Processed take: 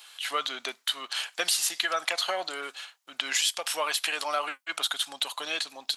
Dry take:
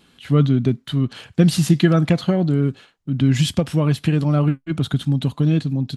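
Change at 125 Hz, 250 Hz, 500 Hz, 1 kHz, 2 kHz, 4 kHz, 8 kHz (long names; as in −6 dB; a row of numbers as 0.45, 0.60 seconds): below −40 dB, −32.5 dB, −12.0 dB, +1.0 dB, +2.5 dB, +4.0 dB, +5.0 dB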